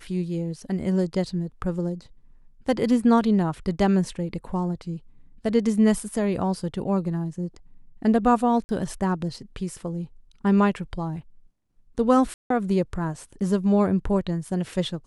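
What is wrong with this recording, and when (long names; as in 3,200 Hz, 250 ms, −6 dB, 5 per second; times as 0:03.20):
0:08.64–0:08.69: drop-out 50 ms
0:12.34–0:12.50: drop-out 163 ms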